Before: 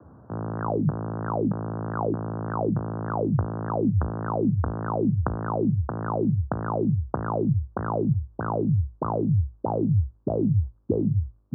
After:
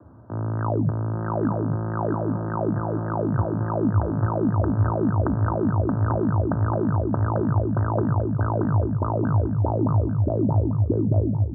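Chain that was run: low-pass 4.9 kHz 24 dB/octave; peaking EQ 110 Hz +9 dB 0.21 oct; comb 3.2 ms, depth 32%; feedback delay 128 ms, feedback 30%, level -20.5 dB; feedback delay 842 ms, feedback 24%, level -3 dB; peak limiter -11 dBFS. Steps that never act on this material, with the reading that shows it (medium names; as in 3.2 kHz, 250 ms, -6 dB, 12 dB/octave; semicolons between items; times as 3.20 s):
low-pass 4.9 kHz: input has nothing above 1.5 kHz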